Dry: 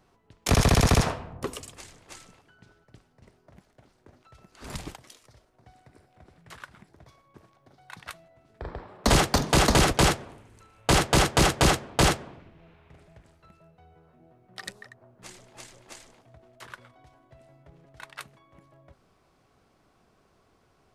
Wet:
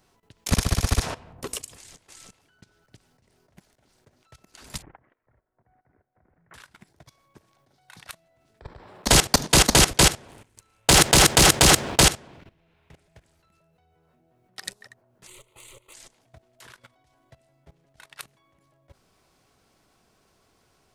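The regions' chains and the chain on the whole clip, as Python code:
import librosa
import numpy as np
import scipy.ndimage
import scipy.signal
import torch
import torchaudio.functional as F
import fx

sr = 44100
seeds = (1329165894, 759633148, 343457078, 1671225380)

y = fx.chain(x, sr, fx.steep_lowpass(hz=1900.0, slope=36),
    fx.level_steps(step_db=12), at=(4.82, 6.54))
y = fx.chain(y, sr, fx.leveller(passes=1),
    fx.sustainer(db_per_s=67.0), at=(10.28, 12.01))
y = fx.chain(y, sr, fx.leveller(passes=1),
    fx.fixed_phaser(hz=1100.0, stages=8), at=(15.27, 15.94))
y = fx.high_shelf(y, sr, hz=3100.0, db=10.5)
y = fx.notch(y, sr, hz=1200.0, q=18.0)
y = fx.level_steps(y, sr, step_db=17)
y = y * 10.0 ** (3.0 / 20.0)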